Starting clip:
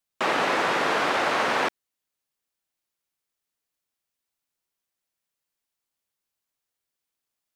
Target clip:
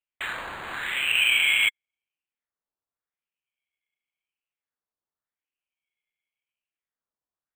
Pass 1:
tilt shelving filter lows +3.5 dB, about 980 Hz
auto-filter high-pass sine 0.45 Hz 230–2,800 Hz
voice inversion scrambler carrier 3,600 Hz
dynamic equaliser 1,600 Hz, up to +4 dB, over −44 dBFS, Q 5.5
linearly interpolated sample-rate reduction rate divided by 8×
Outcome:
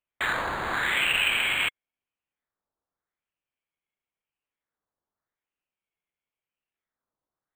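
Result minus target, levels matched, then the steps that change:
1,000 Hz band +10.0 dB
change: tilt shelving filter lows +14 dB, about 980 Hz

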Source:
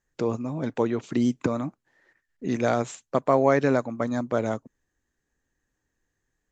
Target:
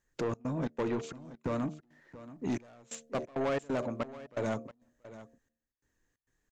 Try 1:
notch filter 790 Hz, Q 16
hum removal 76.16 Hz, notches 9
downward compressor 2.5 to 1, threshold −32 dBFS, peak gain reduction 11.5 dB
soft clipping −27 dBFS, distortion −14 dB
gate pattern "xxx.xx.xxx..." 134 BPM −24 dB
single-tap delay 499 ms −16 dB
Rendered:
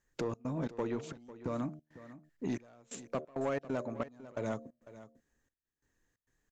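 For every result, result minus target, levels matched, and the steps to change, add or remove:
downward compressor: peak gain reduction +6.5 dB; echo 180 ms early
change: downward compressor 2.5 to 1, threshold −21.5 dBFS, peak gain reduction 5 dB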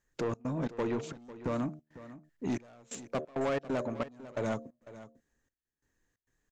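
echo 180 ms early
change: single-tap delay 679 ms −16 dB

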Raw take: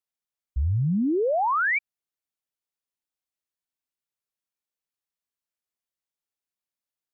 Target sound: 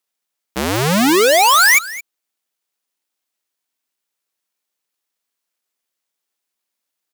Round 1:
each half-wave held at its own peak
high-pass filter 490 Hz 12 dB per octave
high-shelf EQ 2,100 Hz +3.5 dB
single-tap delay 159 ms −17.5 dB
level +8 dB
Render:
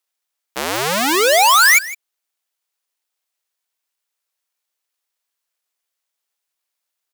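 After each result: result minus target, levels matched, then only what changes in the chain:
250 Hz band −8.0 dB; echo 61 ms early
change: high-pass filter 210 Hz 12 dB per octave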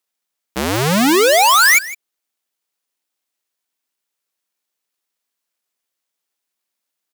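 echo 61 ms early
change: single-tap delay 220 ms −17.5 dB

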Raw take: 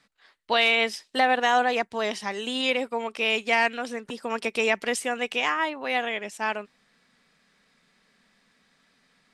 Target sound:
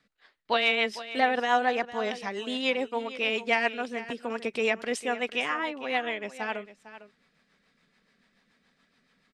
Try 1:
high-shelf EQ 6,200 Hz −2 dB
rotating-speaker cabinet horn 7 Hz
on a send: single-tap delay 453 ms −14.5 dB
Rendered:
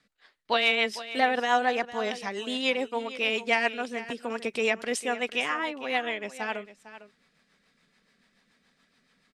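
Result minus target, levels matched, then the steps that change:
8,000 Hz band +4.0 dB
change: high-shelf EQ 6,200 Hz −9.5 dB

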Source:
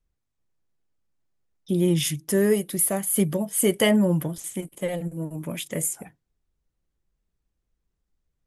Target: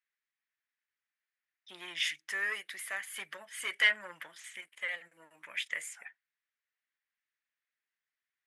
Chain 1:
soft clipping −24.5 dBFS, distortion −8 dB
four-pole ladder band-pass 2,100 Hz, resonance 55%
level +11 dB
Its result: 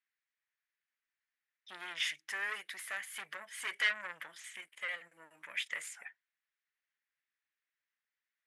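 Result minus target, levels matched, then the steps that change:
soft clipping: distortion +8 dB
change: soft clipping −16 dBFS, distortion −16 dB

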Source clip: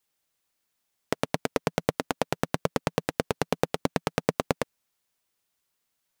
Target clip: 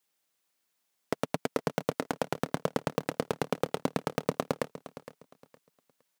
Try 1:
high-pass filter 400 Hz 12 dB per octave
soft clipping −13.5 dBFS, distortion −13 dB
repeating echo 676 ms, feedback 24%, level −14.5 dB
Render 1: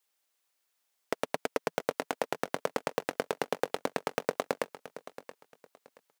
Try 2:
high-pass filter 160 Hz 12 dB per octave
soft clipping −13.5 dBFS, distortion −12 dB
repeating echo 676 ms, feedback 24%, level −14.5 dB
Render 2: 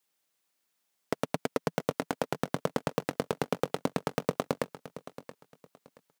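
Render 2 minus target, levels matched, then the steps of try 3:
echo 213 ms late
high-pass filter 160 Hz 12 dB per octave
soft clipping −13.5 dBFS, distortion −12 dB
repeating echo 463 ms, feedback 24%, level −14.5 dB

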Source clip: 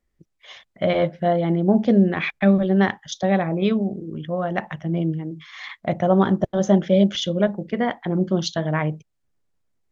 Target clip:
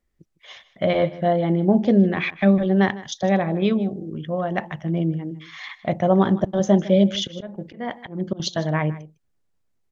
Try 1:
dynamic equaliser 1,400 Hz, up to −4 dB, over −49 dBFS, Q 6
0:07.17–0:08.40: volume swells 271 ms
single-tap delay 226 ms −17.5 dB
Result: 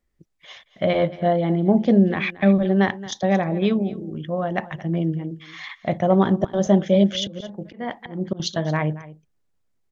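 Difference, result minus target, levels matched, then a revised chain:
echo 71 ms late
dynamic equaliser 1,400 Hz, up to −4 dB, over −49 dBFS, Q 6
0:07.17–0:08.40: volume swells 271 ms
single-tap delay 155 ms −17.5 dB

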